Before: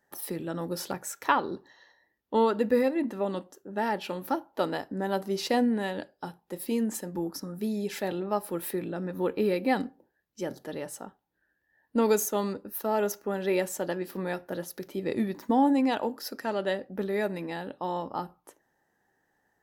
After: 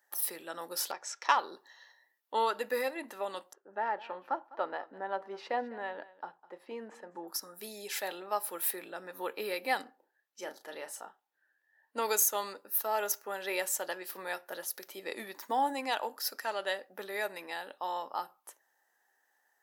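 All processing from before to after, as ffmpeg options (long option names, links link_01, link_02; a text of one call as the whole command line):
ffmpeg -i in.wav -filter_complex "[0:a]asettb=1/sr,asplit=3[link_01][link_02][link_03];[link_01]atrim=end=0.914[link_04];[link_02]atrim=start=0.91:end=1.37,asetpts=PTS-STARTPTS,afade=type=in:duration=0.004:curve=qsin,afade=type=out:start_time=0.456:duration=0.004:curve=qsin,adynamicsmooth=sensitivity=5:basefreq=4900,highpass=190,equalizer=frequency=200:width_type=q:width=4:gain=-9,equalizer=frequency=1500:width_type=q:width=4:gain=-4,equalizer=frequency=5400:width_type=q:width=4:gain=9,equalizer=frequency=9000:width_type=q:width=4:gain=-8,lowpass=frequency=9400:width=0.5412,lowpass=frequency=9400:width=1.3066[link_05];[link_03]atrim=start=1.366[link_06];[link_04][link_05]acrossfade=duration=0.004:curve1=hsin:curve2=qsin[link_07];[link_07][link_06]acrossfade=duration=0.004:curve1=qsin:curve2=hsin,asettb=1/sr,asplit=3[link_08][link_09][link_10];[link_08]atrim=end=3.534[link_11];[link_09]atrim=start=3.53:end=7.28,asetpts=PTS-STARTPTS,afade=type=in:duration=0.004:curve=qsin,afade=type=out:start_time=3.746:duration=0.004:curve=qsin,lowpass=1500,aecho=1:1:204:0.112,atrim=end_sample=165375[link_12];[link_10]atrim=start=7.276[link_13];[link_11][link_12]acrossfade=duration=0.004:curve1=hsin:curve2=qsin[link_14];[link_14][link_13]acrossfade=duration=0.004:curve1=qsin:curve2=hsin,asettb=1/sr,asplit=3[link_15][link_16][link_17];[link_15]atrim=end=9.834[link_18];[link_16]atrim=start=9.83:end=11.97,asetpts=PTS-STARTPTS,afade=type=in:duration=0.004:curve=qsin,afade=type=out:start_time=2.136:duration=0.004:curve=qsin,highshelf=frequency=5200:gain=-9.5,asplit=2[link_19][link_20];[link_20]adelay=33,volume=-8dB[link_21];[link_19][link_21]amix=inputs=2:normalize=0,atrim=end_sample=94374[link_22];[link_17]atrim=start=11.966[link_23];[link_18][link_22]acrossfade=duration=0.004:curve1=hsin:curve2=qsin[link_24];[link_24][link_23]acrossfade=duration=0.004:curve1=qsin:curve2=hsin,highpass=770,highshelf=frequency=6500:gain=7" out.wav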